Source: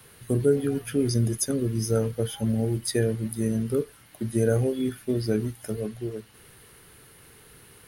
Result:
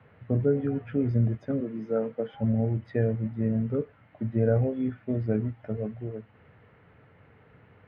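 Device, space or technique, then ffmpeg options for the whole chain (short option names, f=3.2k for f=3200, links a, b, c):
bass cabinet: -filter_complex "[0:a]asettb=1/sr,asplit=3[a][b][c];[a]atrim=end=1.604[d];[b]atrim=start=1.6:end=2.34,asetpts=PTS-STARTPTS,afade=t=in:d=0.004:c=qsin,afade=t=out:st=0.736:d=0.004:c=qsin,highpass=f=210:w=0.5412,highpass=f=210:w=1.3066[e];[c]atrim=start=2.336[f];[d][e]acrossfade=d=0.004:c1=hsin:c2=qsin[g];[g][f]acrossfade=d=0.004:c1=qsin:c2=hsin,highpass=85,equalizer=f=94:t=q:w=4:g=6,equalizer=f=370:t=q:w=4:g=-9,equalizer=f=620:t=q:w=4:g=4,equalizer=f=1.1k:t=q:w=4:g=-4,equalizer=f=1.6k:t=q:w=4:g=-5,lowpass=f=2k:w=0.5412,lowpass=f=2k:w=1.3066"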